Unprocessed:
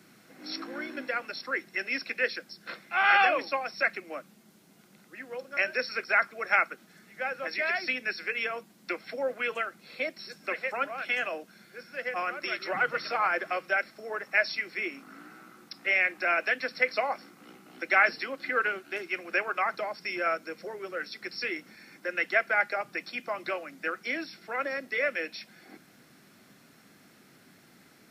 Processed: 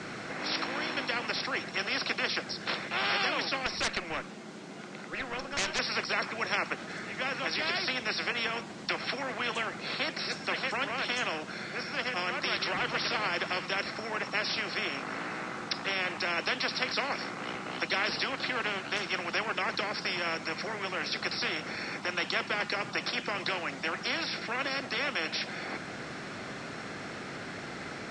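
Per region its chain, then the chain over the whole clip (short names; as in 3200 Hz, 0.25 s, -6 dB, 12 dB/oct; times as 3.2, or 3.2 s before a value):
3.66–5.79 Bessel high-pass 180 Hz + tube stage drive 29 dB, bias 0.5
whole clip: steep low-pass 8300 Hz 36 dB/oct; high shelf 4000 Hz -11.5 dB; spectral compressor 4:1; gain -3 dB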